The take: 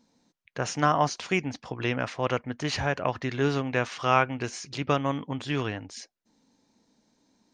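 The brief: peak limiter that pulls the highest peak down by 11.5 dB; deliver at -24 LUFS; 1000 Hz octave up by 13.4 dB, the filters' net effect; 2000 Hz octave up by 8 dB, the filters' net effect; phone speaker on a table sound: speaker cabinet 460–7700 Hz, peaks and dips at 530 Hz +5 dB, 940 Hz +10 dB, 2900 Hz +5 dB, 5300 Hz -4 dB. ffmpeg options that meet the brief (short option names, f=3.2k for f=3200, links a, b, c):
-af "equalizer=f=1k:t=o:g=8.5,equalizer=f=2k:t=o:g=6,alimiter=limit=-12dB:level=0:latency=1,highpass=f=460:w=0.5412,highpass=f=460:w=1.3066,equalizer=f=530:t=q:w=4:g=5,equalizer=f=940:t=q:w=4:g=10,equalizer=f=2.9k:t=q:w=4:g=5,equalizer=f=5.3k:t=q:w=4:g=-4,lowpass=f=7.7k:w=0.5412,lowpass=f=7.7k:w=1.3066"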